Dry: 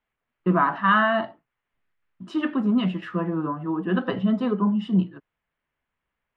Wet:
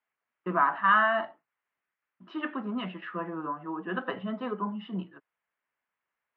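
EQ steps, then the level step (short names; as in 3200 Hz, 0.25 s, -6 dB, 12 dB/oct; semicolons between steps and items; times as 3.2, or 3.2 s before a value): band-pass 1800 Hz, Q 0.51; air absorption 280 m; 0.0 dB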